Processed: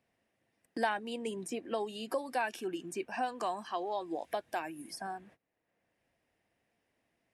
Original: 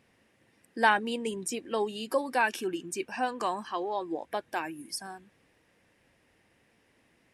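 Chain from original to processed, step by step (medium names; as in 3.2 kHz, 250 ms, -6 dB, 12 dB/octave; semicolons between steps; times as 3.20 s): peaking EQ 680 Hz +8 dB 0.33 oct; gate -58 dBFS, range -27 dB; three bands compressed up and down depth 70%; trim -7 dB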